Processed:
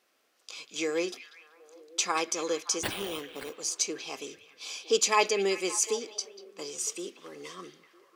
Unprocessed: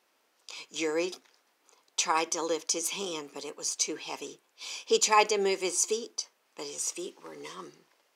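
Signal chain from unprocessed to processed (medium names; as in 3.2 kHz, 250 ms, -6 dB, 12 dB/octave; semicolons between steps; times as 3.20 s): band-stop 920 Hz, Q 5.1; 2.83–3.57 s: sample-rate reducer 6.3 kHz, jitter 0%; on a send: repeats whose band climbs or falls 191 ms, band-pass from 3.1 kHz, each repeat -0.7 oct, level -10 dB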